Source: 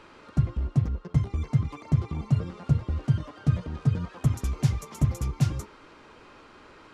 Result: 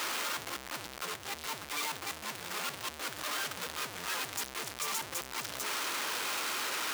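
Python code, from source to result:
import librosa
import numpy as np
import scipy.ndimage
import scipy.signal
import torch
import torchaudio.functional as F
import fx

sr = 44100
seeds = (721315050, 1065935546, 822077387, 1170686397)

y = np.sign(x) * np.sqrt(np.mean(np.square(x)))
y = fx.highpass(y, sr, hz=1500.0, slope=6)
y = fx.band_widen(y, sr, depth_pct=70, at=(1.16, 3.19))
y = F.gain(torch.from_numpy(y), -4.0).numpy()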